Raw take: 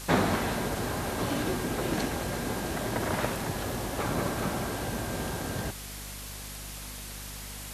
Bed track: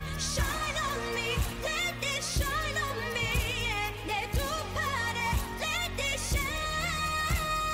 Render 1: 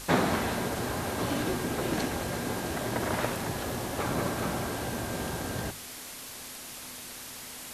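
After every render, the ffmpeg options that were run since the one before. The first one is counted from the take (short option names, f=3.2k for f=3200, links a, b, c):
-af "bandreject=f=50:t=h:w=6,bandreject=f=100:t=h:w=6,bandreject=f=150:t=h:w=6,bandreject=f=200:t=h:w=6"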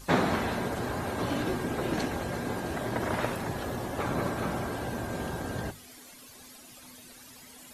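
-af "afftdn=nr=13:nf=-43"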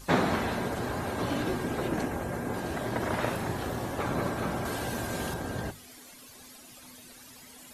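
-filter_complex "[0:a]asettb=1/sr,asplit=3[a][b][c];[a]atrim=end=1.884[d];[b]atrim=start=1.88:end=2.54,asetpts=PTS-STARTPTS,afade=t=in:d=0.004:c=qsin,afade=t=out:st=0.656:d=0.004:c=qsin,equalizer=f=4k:t=o:w=1.2:g=-8.5[e];[c]atrim=start=2.536[f];[d][e]acrossfade=d=0.004:c1=hsin:c2=qsin[g];[g][f]acrossfade=d=0.004:c1=qsin:c2=hsin,asettb=1/sr,asplit=3[h][i][j];[h]atrim=end=3.234[k];[i]atrim=start=3.23:end=3.95,asetpts=PTS-STARTPTS,afade=t=in:d=0.004:c=qsin,afade=t=out:st=0.716:d=0.004:c=qsin,asplit=2[l][m];[m]adelay=35,volume=-6dB[n];[l][n]amix=inputs=2:normalize=0,atrim=end_sample=31752[o];[j]atrim=start=3.946[p];[k][o]acrossfade=d=0.004:c1=hsin:c2=qsin[q];[q][p]acrossfade=d=0.004:c1=qsin:c2=hsin,asettb=1/sr,asplit=3[r][s][t];[r]atrim=end=4.654[u];[s]atrim=start=4.65:end=5.34,asetpts=PTS-STARTPTS,afade=t=in:d=0.004:c=qsin,afade=t=out:st=0.686:d=0.004:c=qsin,highshelf=f=2.1k:g=7.5[v];[t]atrim=start=5.336[w];[u][v]acrossfade=d=0.004:c1=hsin:c2=qsin[x];[x][w]acrossfade=d=0.004:c1=qsin:c2=hsin"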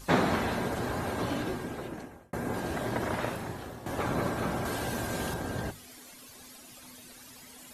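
-filter_complex "[0:a]asplit=3[a][b][c];[a]atrim=end=2.33,asetpts=PTS-STARTPTS,afade=t=out:st=1.12:d=1.21[d];[b]atrim=start=2.33:end=3.86,asetpts=PTS-STARTPTS,afade=t=in:d=0.004:c=hsin,afade=t=out:st=0.57:d=0.96:silence=0.237137[e];[c]atrim=start=3.86,asetpts=PTS-STARTPTS,afade=t=in:d=0.004:c=hsin:silence=0.237137[f];[d][e][f]concat=n=3:v=0:a=1"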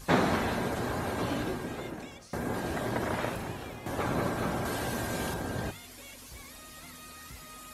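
-filter_complex "[1:a]volume=-20dB[a];[0:a][a]amix=inputs=2:normalize=0"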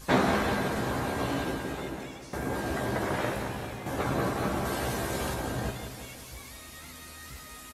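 -filter_complex "[0:a]asplit=2[a][b];[b]adelay=15,volume=-5dB[c];[a][c]amix=inputs=2:normalize=0,aecho=1:1:179|358|537|716|895|1074|1253:0.376|0.214|0.122|0.0696|0.0397|0.0226|0.0129"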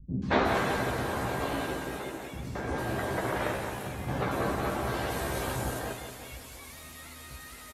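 -filter_complex "[0:a]acrossover=split=230|5500[a][b][c];[b]adelay=220[d];[c]adelay=450[e];[a][d][e]amix=inputs=3:normalize=0"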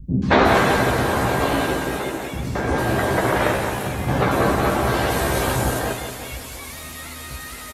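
-af "volume=11.5dB,alimiter=limit=-3dB:level=0:latency=1"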